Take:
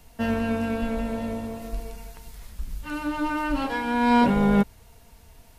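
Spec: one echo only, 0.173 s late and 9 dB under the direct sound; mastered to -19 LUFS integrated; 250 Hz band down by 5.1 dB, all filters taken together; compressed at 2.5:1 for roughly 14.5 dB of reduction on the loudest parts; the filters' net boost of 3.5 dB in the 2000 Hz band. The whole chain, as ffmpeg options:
-af "equalizer=f=250:t=o:g=-6,equalizer=f=2k:t=o:g=5,acompressor=threshold=-39dB:ratio=2.5,aecho=1:1:173:0.355,volume=19dB"

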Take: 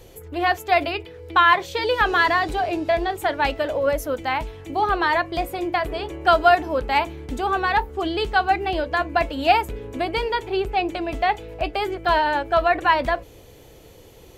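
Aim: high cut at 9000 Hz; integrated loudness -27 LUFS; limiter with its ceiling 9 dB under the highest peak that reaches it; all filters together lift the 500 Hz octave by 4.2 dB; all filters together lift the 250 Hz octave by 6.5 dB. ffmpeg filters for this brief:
-af "lowpass=9k,equalizer=f=250:t=o:g=7.5,equalizer=f=500:t=o:g=4,volume=-6dB,alimiter=limit=-16.5dB:level=0:latency=1"

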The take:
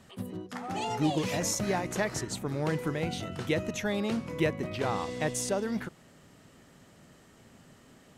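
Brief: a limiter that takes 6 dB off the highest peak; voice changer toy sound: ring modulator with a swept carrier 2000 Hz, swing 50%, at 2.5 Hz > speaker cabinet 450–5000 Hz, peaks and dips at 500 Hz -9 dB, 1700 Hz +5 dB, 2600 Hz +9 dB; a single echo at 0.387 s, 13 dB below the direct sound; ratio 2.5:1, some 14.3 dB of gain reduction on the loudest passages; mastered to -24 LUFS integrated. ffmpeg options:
-af "acompressor=threshold=-45dB:ratio=2.5,alimiter=level_in=10.5dB:limit=-24dB:level=0:latency=1,volume=-10.5dB,aecho=1:1:387:0.224,aeval=exprs='val(0)*sin(2*PI*2000*n/s+2000*0.5/2.5*sin(2*PI*2.5*n/s))':c=same,highpass=450,equalizer=f=500:t=q:w=4:g=-9,equalizer=f=1.7k:t=q:w=4:g=5,equalizer=f=2.6k:t=q:w=4:g=9,lowpass=f=5k:w=0.5412,lowpass=f=5k:w=1.3066,volume=17dB"

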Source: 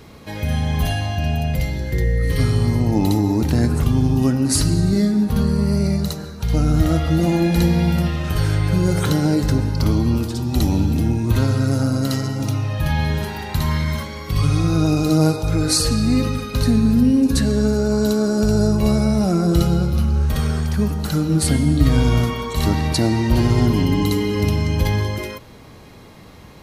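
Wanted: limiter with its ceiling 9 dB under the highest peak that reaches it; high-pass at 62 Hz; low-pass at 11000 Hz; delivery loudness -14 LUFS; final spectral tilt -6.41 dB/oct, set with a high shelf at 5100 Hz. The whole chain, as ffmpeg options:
-af "highpass=62,lowpass=11k,highshelf=f=5.1k:g=5.5,volume=7dB,alimiter=limit=-4.5dB:level=0:latency=1"

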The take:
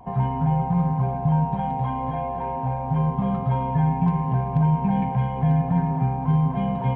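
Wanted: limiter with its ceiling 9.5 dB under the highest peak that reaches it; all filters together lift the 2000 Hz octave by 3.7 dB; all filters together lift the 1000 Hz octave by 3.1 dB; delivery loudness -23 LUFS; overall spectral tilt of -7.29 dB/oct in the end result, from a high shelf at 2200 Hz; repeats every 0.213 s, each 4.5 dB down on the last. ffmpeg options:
-af "equalizer=f=1k:t=o:g=4,equalizer=f=2k:t=o:g=8,highshelf=f=2.2k:g=-9,alimiter=limit=-19.5dB:level=0:latency=1,aecho=1:1:213|426|639|852|1065|1278|1491|1704|1917:0.596|0.357|0.214|0.129|0.0772|0.0463|0.0278|0.0167|0.01,volume=2.5dB"

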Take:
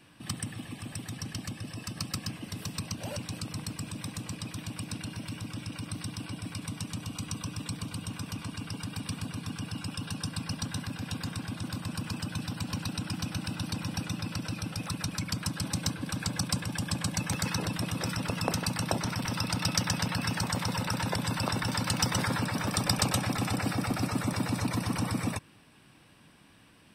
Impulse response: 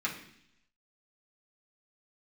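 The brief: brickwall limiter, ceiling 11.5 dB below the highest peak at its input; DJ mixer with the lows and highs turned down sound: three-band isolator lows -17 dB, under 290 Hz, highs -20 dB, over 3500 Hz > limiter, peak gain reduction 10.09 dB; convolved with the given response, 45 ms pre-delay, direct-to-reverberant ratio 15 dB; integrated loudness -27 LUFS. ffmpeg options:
-filter_complex "[0:a]alimiter=limit=-21.5dB:level=0:latency=1,asplit=2[a][b];[1:a]atrim=start_sample=2205,adelay=45[c];[b][c]afir=irnorm=-1:irlink=0,volume=-21dB[d];[a][d]amix=inputs=2:normalize=0,acrossover=split=290 3500:gain=0.141 1 0.1[e][f][g];[e][f][g]amix=inputs=3:normalize=0,volume=15.5dB,alimiter=limit=-15.5dB:level=0:latency=1"

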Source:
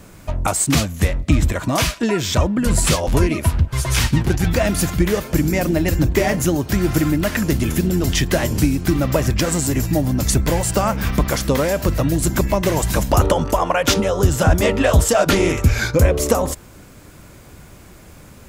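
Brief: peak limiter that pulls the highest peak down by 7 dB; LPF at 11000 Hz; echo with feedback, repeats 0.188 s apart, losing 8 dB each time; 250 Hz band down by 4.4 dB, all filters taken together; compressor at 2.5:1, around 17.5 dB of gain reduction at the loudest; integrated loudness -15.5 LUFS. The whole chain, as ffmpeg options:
-af "lowpass=11k,equalizer=f=250:t=o:g=-6.5,acompressor=threshold=-37dB:ratio=2.5,alimiter=level_in=1dB:limit=-24dB:level=0:latency=1,volume=-1dB,aecho=1:1:188|376|564|752|940:0.398|0.159|0.0637|0.0255|0.0102,volume=19.5dB"

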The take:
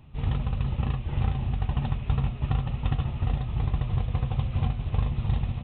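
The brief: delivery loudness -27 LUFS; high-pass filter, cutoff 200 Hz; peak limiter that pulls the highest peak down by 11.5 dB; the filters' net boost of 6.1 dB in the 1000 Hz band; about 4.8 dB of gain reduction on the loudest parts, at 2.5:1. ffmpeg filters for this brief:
-af "highpass=200,equalizer=f=1k:t=o:g=8,acompressor=threshold=-34dB:ratio=2.5,volume=16dB,alimiter=limit=-17dB:level=0:latency=1"

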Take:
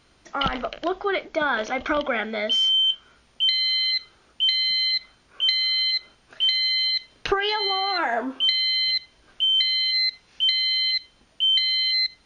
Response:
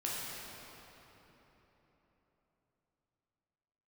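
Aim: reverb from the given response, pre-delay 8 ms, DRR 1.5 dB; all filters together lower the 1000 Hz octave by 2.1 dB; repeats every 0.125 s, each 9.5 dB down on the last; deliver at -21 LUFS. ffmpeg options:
-filter_complex "[0:a]equalizer=f=1k:t=o:g=-3,aecho=1:1:125|250|375|500:0.335|0.111|0.0365|0.012,asplit=2[a][b];[1:a]atrim=start_sample=2205,adelay=8[c];[b][c]afir=irnorm=-1:irlink=0,volume=-6dB[d];[a][d]amix=inputs=2:normalize=0,volume=-1dB"

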